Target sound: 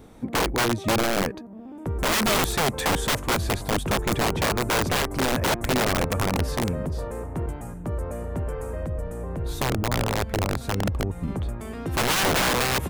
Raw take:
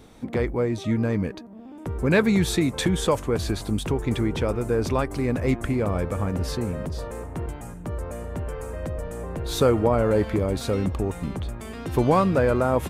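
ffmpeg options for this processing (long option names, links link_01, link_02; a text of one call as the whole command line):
ffmpeg -i in.wav -filter_complex "[0:a]asettb=1/sr,asplit=3[link_01][link_02][link_03];[link_01]atrim=end=8.824[link_04];[link_02]atrim=start=8.82:end=11.28,asetpts=PTS-STARTPTS,afade=type=in:duration=0.004:curve=qsin,afade=type=out:start_time=2.456:duration=0.004:curve=qsin,acrossover=split=210[link_05][link_06];[link_06]acompressor=threshold=-36dB:ratio=3[link_07];[link_05][link_07]amix=inputs=2:normalize=0[link_08];[link_03]atrim=start=11.276[link_09];[link_04][link_08]acrossfade=duration=0.004:curve1=hsin:curve2=qsin[link_10];[link_10][link_09]acrossfade=duration=0.004:curve1=qsin:curve2=hsin,equalizer=frequency=4200:width_type=o:width=2.2:gain=-6.5,aeval=exprs='(mod(8.91*val(0)+1,2)-1)/8.91':channel_layout=same,volume=2dB" out.wav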